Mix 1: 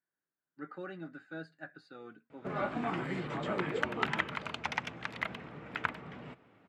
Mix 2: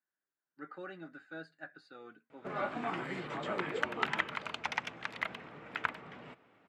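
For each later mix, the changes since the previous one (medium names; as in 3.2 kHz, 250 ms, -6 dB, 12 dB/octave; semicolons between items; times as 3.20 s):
master: add bass shelf 250 Hz -9.5 dB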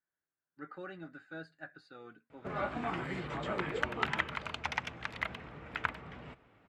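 master: remove high-pass 180 Hz 12 dB/octave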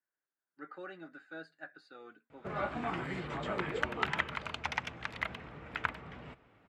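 speech: add high-pass 260 Hz 12 dB/octave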